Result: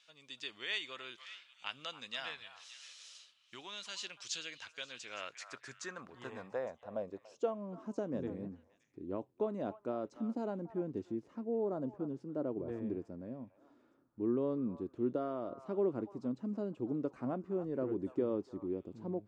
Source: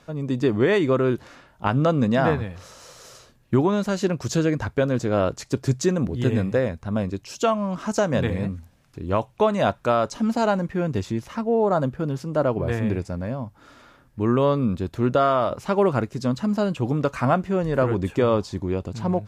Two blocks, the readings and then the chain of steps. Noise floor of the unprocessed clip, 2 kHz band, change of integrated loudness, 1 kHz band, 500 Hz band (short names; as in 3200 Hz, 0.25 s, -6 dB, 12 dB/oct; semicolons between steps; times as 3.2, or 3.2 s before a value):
-56 dBFS, -15.0 dB, -16.5 dB, -21.5 dB, -16.0 dB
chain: downsampling 22050 Hz; pre-emphasis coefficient 0.8; on a send: delay with a stepping band-pass 0.287 s, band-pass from 1000 Hz, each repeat 1.4 oct, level -10 dB; on the sum: band-pass sweep 3100 Hz -> 320 Hz, 4.87–7.78; gain +5.5 dB